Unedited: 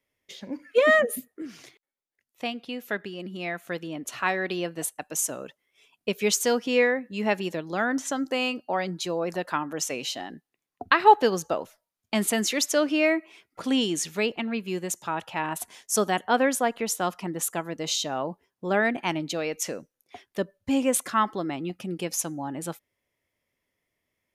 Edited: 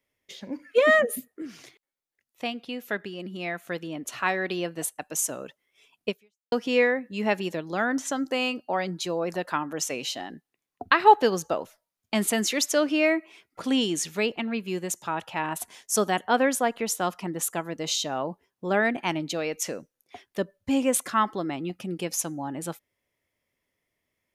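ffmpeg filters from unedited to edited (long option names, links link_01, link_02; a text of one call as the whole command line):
ffmpeg -i in.wav -filter_complex "[0:a]asplit=2[link_01][link_02];[link_01]atrim=end=6.52,asetpts=PTS-STARTPTS,afade=type=out:start_time=6.09:duration=0.43:curve=exp[link_03];[link_02]atrim=start=6.52,asetpts=PTS-STARTPTS,afade=type=in:duration=0.004:curve=hsin[link_04];[link_03][link_04]concat=n=2:v=0:a=1" out.wav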